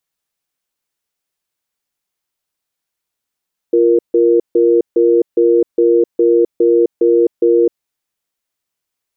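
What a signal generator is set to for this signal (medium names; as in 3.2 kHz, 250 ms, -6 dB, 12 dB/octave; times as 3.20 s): cadence 347 Hz, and 469 Hz, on 0.26 s, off 0.15 s, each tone -10.5 dBFS 3.99 s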